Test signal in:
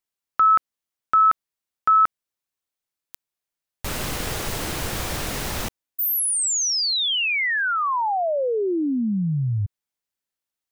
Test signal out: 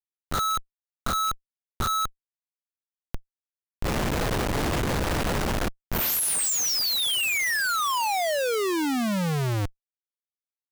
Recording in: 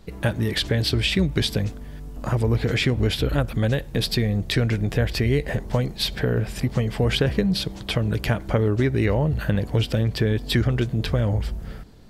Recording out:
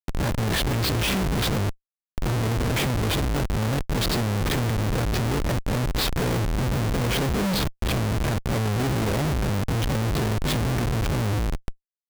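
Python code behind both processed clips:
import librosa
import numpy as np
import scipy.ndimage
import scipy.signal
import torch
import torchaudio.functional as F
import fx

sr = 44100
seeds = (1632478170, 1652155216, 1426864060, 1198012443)

y = fx.spec_swells(x, sr, rise_s=0.32)
y = fx.schmitt(y, sr, flips_db=-24.5)
y = y * 10.0 ** (-1.5 / 20.0)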